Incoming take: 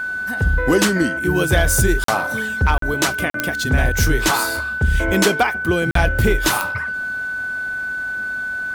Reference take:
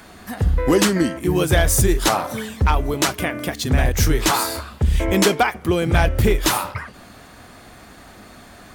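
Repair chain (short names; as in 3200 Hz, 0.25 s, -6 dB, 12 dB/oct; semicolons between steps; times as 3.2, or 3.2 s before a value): de-click; notch 1500 Hz, Q 30; interpolate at 2.04/2.78/3.3/5.91, 43 ms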